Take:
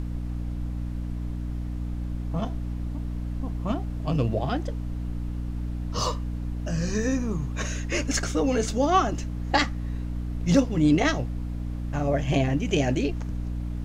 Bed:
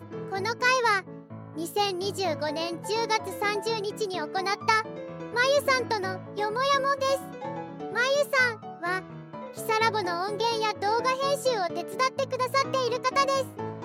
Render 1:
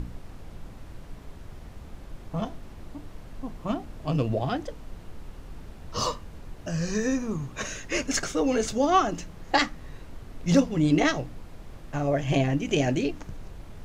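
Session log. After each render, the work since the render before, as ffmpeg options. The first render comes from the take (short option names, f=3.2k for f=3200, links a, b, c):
-af "bandreject=f=60:t=h:w=4,bandreject=f=120:t=h:w=4,bandreject=f=180:t=h:w=4,bandreject=f=240:t=h:w=4,bandreject=f=300:t=h:w=4"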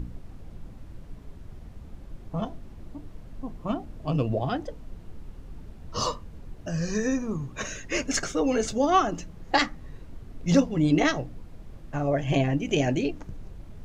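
-af "afftdn=nr=7:nf=-44"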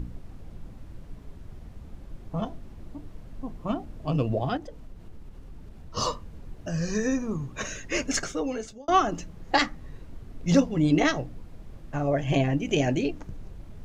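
-filter_complex "[0:a]asettb=1/sr,asplit=3[a][b][c];[a]atrim=end=4.574[d];[b]atrim=start=4.57:end=5.97,asetpts=PTS-STARTPTS,afade=t=in:d=0.004:c=qsin,afade=t=out:st=1.396:d=0.004:c=qsin,acompressor=threshold=-40dB:ratio=2:attack=3.2:release=140:knee=1:detection=peak[e];[c]atrim=start=5.966[f];[d][e]acrossfade=d=0.004:c1=hsin:c2=qsin[g];[g][f]acrossfade=d=0.004:c1=qsin:c2=hsin,asplit=2[h][i];[h]atrim=end=8.88,asetpts=PTS-STARTPTS,afade=t=out:st=8.12:d=0.76[j];[i]atrim=start=8.88,asetpts=PTS-STARTPTS,afade=t=in:d=0.004:c=hsin[k];[j][k]concat=n=2:v=0:a=1"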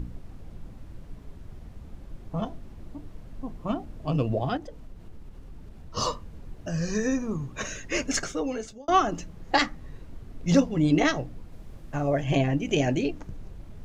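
-filter_complex "[0:a]asettb=1/sr,asplit=3[a][b][c];[a]atrim=end=11.524[d];[b]atrim=start=11.52:end=12.22,asetpts=PTS-STARTPTS,afade=t=in:d=0.004:c=qsin,afade=t=out:st=0.696:d=0.004:c=qsin,highshelf=f=5.9k:g=5[e];[c]atrim=start=12.216[f];[d][e]acrossfade=d=0.004:c1=hsin:c2=qsin[g];[g][f]acrossfade=d=0.004:c1=qsin:c2=hsin"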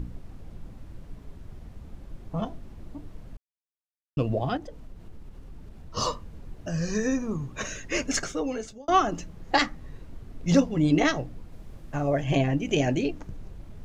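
-filter_complex "[0:a]asplit=3[a][b][c];[a]atrim=end=3.37,asetpts=PTS-STARTPTS,afade=t=out:st=3.366:d=0.004:c=hsin[d];[b]atrim=start=3.37:end=4.17,asetpts=PTS-STARTPTS,volume=0[e];[c]atrim=start=4.17,asetpts=PTS-STARTPTS,afade=t=in:d=0.004:c=hsin[f];[d][e][f]concat=n=3:v=0:a=1"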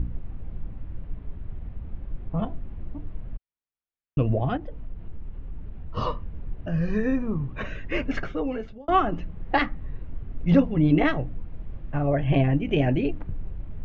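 -af "lowpass=f=3k:w=0.5412,lowpass=f=3k:w=1.3066,lowshelf=f=130:g=9.5"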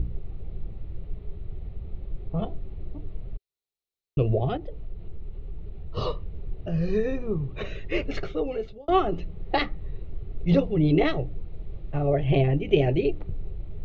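-af "equalizer=f=250:t=o:w=0.33:g=-12,equalizer=f=400:t=o:w=0.33:g=9,equalizer=f=1k:t=o:w=0.33:g=-8,equalizer=f=1.6k:t=o:w=0.33:g=-11,equalizer=f=4k:t=o:w=0.33:g=9"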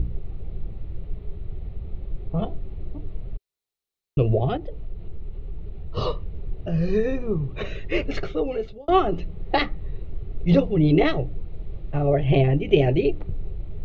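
-af "volume=3dB"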